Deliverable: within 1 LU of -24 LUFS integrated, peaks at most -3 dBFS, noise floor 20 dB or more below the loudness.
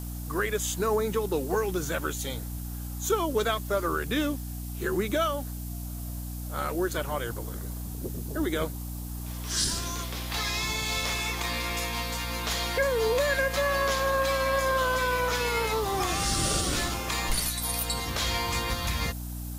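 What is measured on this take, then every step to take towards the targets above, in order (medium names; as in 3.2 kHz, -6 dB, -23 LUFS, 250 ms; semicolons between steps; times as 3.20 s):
hum 60 Hz; highest harmonic 300 Hz; hum level -34 dBFS; noise floor -36 dBFS; noise floor target -49 dBFS; loudness -28.5 LUFS; peak level -14.0 dBFS; loudness target -24.0 LUFS
-> de-hum 60 Hz, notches 5; noise reduction 13 dB, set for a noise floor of -36 dBFS; trim +4.5 dB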